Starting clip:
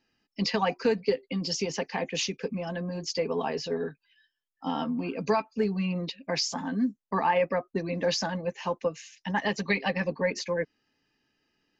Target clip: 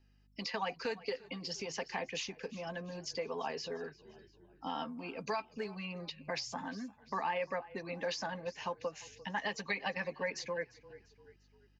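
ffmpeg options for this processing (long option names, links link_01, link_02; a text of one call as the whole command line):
ffmpeg -i in.wav -filter_complex "[0:a]aeval=exprs='val(0)+0.000794*(sin(2*PI*50*n/s)+sin(2*PI*2*50*n/s)/2+sin(2*PI*3*50*n/s)/3+sin(2*PI*4*50*n/s)/4+sin(2*PI*5*50*n/s)/5)':channel_layout=same,asplit=4[link_01][link_02][link_03][link_04];[link_02]adelay=346,afreqshift=-32,volume=-23dB[link_05];[link_03]adelay=692,afreqshift=-64,volume=-29.2dB[link_06];[link_04]adelay=1038,afreqshift=-96,volume=-35.4dB[link_07];[link_01][link_05][link_06][link_07]amix=inputs=4:normalize=0,acrossover=split=570|2100[link_08][link_09][link_10];[link_08]acompressor=threshold=-41dB:ratio=4[link_11];[link_09]acompressor=threshold=-30dB:ratio=4[link_12];[link_10]acompressor=threshold=-36dB:ratio=4[link_13];[link_11][link_12][link_13]amix=inputs=3:normalize=0,volume=-4.5dB" out.wav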